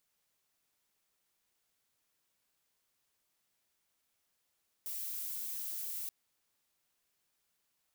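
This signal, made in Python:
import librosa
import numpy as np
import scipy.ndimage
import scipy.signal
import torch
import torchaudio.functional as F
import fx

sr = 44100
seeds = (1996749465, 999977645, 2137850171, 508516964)

y = fx.noise_colour(sr, seeds[0], length_s=1.23, colour='violet', level_db=-40.0)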